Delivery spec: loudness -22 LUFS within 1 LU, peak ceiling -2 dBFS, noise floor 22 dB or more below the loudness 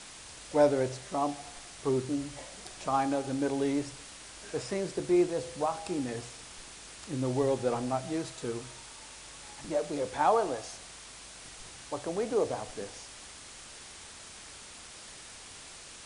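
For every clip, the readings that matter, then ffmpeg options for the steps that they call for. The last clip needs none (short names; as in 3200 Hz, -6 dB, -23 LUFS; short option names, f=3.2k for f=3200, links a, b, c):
noise floor -48 dBFS; noise floor target -54 dBFS; loudness -31.5 LUFS; peak -12.0 dBFS; loudness target -22.0 LUFS
-> -af "afftdn=nr=6:nf=-48"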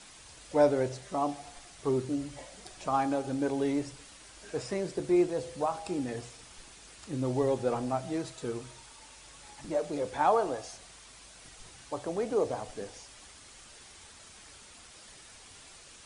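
noise floor -53 dBFS; noise floor target -54 dBFS
-> -af "afftdn=nr=6:nf=-53"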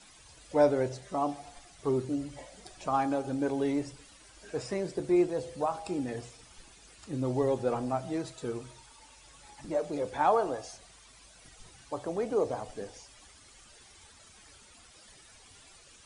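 noise floor -56 dBFS; loudness -31.5 LUFS; peak -12.5 dBFS; loudness target -22.0 LUFS
-> -af "volume=9.5dB"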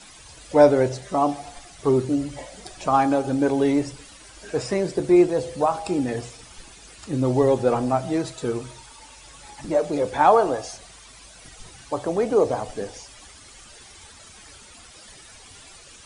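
loudness -22.0 LUFS; peak -3.0 dBFS; noise floor -47 dBFS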